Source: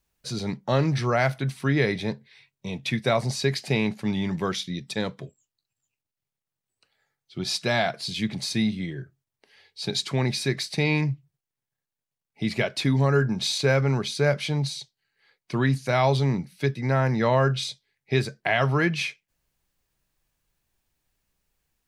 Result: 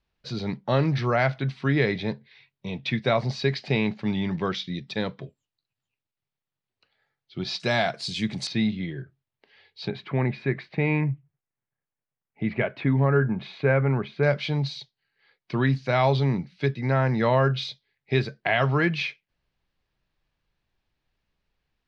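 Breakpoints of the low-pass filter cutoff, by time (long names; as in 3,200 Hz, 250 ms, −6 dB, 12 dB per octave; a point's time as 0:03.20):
low-pass filter 24 dB per octave
4,500 Hz
from 0:07.60 8,300 Hz
from 0:08.47 4,100 Hz
from 0:09.88 2,400 Hz
from 0:14.23 4,500 Hz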